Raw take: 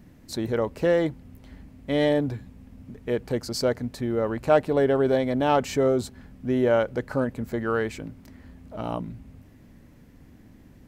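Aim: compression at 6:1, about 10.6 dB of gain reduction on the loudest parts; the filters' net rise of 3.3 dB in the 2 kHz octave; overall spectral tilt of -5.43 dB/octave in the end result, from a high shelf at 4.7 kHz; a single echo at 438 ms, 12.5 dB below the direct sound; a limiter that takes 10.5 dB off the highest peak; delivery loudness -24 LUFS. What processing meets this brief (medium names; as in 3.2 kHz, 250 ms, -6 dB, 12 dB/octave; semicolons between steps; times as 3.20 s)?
peaking EQ 2 kHz +5.5 dB; treble shelf 4.7 kHz -8 dB; compression 6:1, threshold -24 dBFS; peak limiter -25.5 dBFS; delay 438 ms -12.5 dB; trim +12 dB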